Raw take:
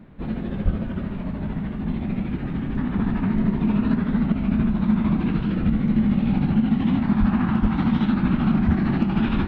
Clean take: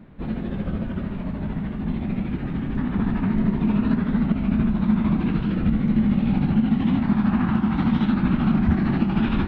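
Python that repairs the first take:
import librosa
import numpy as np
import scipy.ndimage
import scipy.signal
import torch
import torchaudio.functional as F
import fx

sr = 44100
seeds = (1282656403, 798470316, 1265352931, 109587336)

y = fx.fix_declip(x, sr, threshold_db=-10.0)
y = fx.highpass(y, sr, hz=140.0, slope=24, at=(0.64, 0.76), fade=0.02)
y = fx.highpass(y, sr, hz=140.0, slope=24, at=(7.19, 7.31), fade=0.02)
y = fx.highpass(y, sr, hz=140.0, slope=24, at=(7.61, 7.73), fade=0.02)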